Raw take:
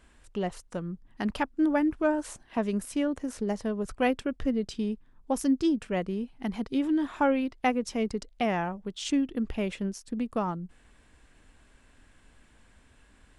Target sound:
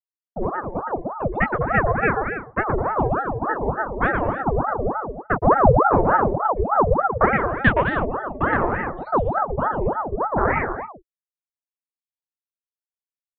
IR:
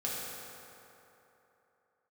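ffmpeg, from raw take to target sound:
-filter_complex "[0:a]afftfilt=real='re*gte(hypot(re,im),0.0562)':imag='im*gte(hypot(re,im),0.0562)':win_size=1024:overlap=0.75,afwtdn=0.0282,deesser=0.5,agate=range=-23dB:threshold=-57dB:ratio=16:detection=peak,dynaudnorm=framelen=310:gausssize=3:maxgain=13.5dB,aphaser=in_gain=1:out_gain=1:delay=2:decay=0.39:speed=0.17:type=triangular,highpass=frequency=160:width=0.5412,highpass=frequency=160:width=1.3066,equalizer=frequency=250:width_type=q:width=4:gain=-4,equalizer=frequency=360:width_type=q:width=4:gain=-8,equalizer=frequency=600:width_type=q:width=4:gain=-9,equalizer=frequency=1900:width_type=q:width=4:gain=-7,lowpass=frequency=2200:width=0.5412,lowpass=frequency=2200:width=1.3066,asplit=2[link_01][link_02];[link_02]adelay=21,volume=-6dB[link_03];[link_01][link_03]amix=inputs=2:normalize=0,asplit=2[link_04][link_05];[link_05]aecho=0:1:120|204|262.8|304|332.8:0.631|0.398|0.251|0.158|0.1[link_06];[link_04][link_06]amix=inputs=2:normalize=0,aeval=exprs='val(0)*sin(2*PI*630*n/s+630*0.75/3.4*sin(2*PI*3.4*n/s))':channel_layout=same"

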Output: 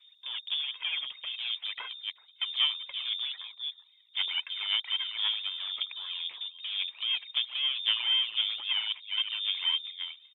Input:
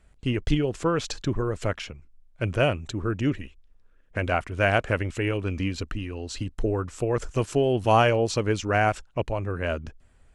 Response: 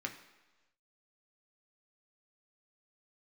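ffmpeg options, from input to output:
-af "aecho=1:1:383:0.106,acompressor=threshold=-28dB:ratio=3,volume=33.5dB,asoftclip=hard,volume=-33.5dB,aphaser=in_gain=1:out_gain=1:delay=1.9:decay=0.64:speed=1.9:type=sinusoidal,alimiter=level_in=4dB:limit=-24dB:level=0:latency=1:release=89,volume=-4dB,adynamicequalizer=threshold=0.00355:dfrequency=550:dqfactor=2.2:tfrequency=550:tqfactor=2.2:attack=5:release=100:ratio=0.375:range=3:mode=boostabove:tftype=bell,aeval=exprs='val(0)+0.000794*(sin(2*PI*60*n/s)+sin(2*PI*2*60*n/s)/2+sin(2*PI*3*60*n/s)/3+sin(2*PI*4*60*n/s)/4+sin(2*PI*5*60*n/s)/5)':channel_layout=same,highpass=frequency=190:poles=1,adynamicsmooth=sensitivity=2.5:basefreq=1000,lowpass=frequency=3100:width_type=q:width=0.5098,lowpass=frequency=3100:width_type=q:width=0.6013,lowpass=frequency=3100:width_type=q:width=0.9,lowpass=frequency=3100:width_type=q:width=2.563,afreqshift=-3700,equalizer=frequency=400:width_type=o:width=0.67:gain=4,equalizer=frequency=1000:width_type=o:width=0.67:gain=9,equalizer=frequency=2500:width_type=o:width=0.67:gain=7" -ar 48000 -c:a libopus -b:a 32k

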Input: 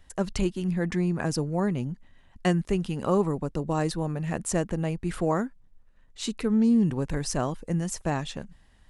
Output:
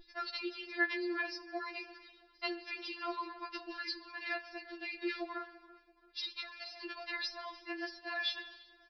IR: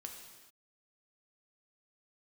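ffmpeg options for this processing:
-filter_complex "[0:a]agate=range=-33dB:threshold=-43dB:ratio=3:detection=peak,aderivative,aeval=exprs='val(0)+0.000631*(sin(2*PI*60*n/s)+sin(2*PI*2*60*n/s)/2+sin(2*PI*3*60*n/s)/3+sin(2*PI*4*60*n/s)/4+sin(2*PI*5*60*n/s)/5)':channel_layout=same,equalizer=frequency=3200:width_type=o:width=0.68:gain=-11,acrossover=split=170[link_01][link_02];[link_02]acompressor=threshold=-58dB:ratio=4[link_03];[link_01][link_03]amix=inputs=2:normalize=0,crystalizer=i=9.5:c=0,acrossover=split=3400[link_04][link_05];[link_05]acompressor=threshold=-52dB:ratio=4:attack=1:release=60[link_06];[link_04][link_06]amix=inputs=2:normalize=0,asplit=2[link_07][link_08];[link_08]adelay=336,lowpass=frequency=3200:poles=1,volume=-20dB,asplit=2[link_09][link_10];[link_10]adelay=336,lowpass=frequency=3200:poles=1,volume=0.45,asplit=2[link_11][link_12];[link_12]adelay=336,lowpass=frequency=3200:poles=1,volume=0.45[link_13];[link_07][link_09][link_11][link_13]amix=inputs=4:normalize=0,asplit=2[link_14][link_15];[1:a]atrim=start_sample=2205[link_16];[link_15][link_16]afir=irnorm=-1:irlink=0,volume=-3dB[link_17];[link_14][link_17]amix=inputs=2:normalize=0,aresample=11025,aresample=44100,afftfilt=real='re*4*eq(mod(b,16),0)':imag='im*4*eq(mod(b,16),0)':win_size=2048:overlap=0.75,volume=17dB"

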